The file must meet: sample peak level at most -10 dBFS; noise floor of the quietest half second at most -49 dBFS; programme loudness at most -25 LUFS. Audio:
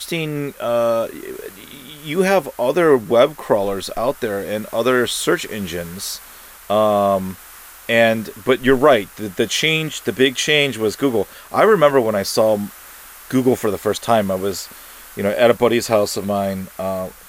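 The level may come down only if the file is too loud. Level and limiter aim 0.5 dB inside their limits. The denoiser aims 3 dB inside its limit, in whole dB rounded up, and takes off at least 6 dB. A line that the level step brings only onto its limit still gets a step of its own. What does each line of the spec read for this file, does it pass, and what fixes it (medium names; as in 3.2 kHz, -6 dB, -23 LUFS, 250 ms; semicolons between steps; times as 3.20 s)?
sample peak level -2.0 dBFS: fail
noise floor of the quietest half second -41 dBFS: fail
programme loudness -18.0 LUFS: fail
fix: noise reduction 6 dB, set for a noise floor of -41 dBFS; trim -7.5 dB; peak limiter -10.5 dBFS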